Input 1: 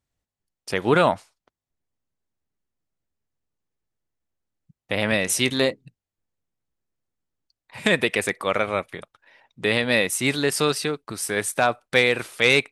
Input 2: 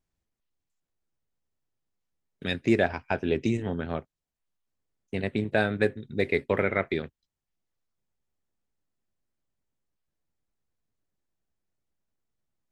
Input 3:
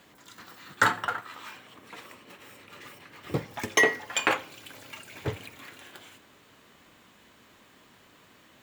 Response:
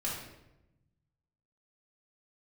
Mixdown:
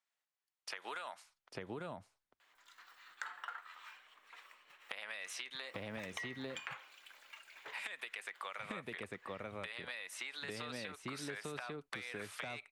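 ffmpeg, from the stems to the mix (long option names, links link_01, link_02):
-filter_complex "[0:a]acrossover=split=230|5300[link_01][link_02][link_03];[link_01]acompressor=threshold=-37dB:ratio=4[link_04];[link_02]acompressor=threshold=-30dB:ratio=4[link_05];[link_03]acompressor=threshold=-45dB:ratio=4[link_06];[link_04][link_05][link_06]amix=inputs=3:normalize=0,volume=2dB,asplit=2[link_07][link_08];[link_08]volume=-12dB[link_09];[2:a]acontrast=28,adelay=2400,volume=-12dB[link_10];[link_07][link_10]amix=inputs=2:normalize=0,highpass=1200,acompressor=threshold=-34dB:ratio=6,volume=0dB[link_11];[link_09]aecho=0:1:847:1[link_12];[link_11][link_12]amix=inputs=2:normalize=0,highshelf=frequency=4200:gain=-11.5,acompressor=threshold=-40dB:ratio=6"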